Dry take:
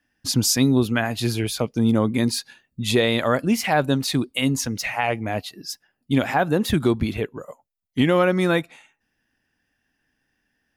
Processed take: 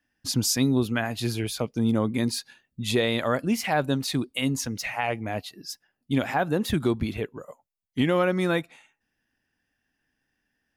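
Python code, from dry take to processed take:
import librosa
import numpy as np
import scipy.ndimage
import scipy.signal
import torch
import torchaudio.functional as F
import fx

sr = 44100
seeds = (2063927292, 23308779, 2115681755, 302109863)

y = F.gain(torch.from_numpy(x), -4.5).numpy()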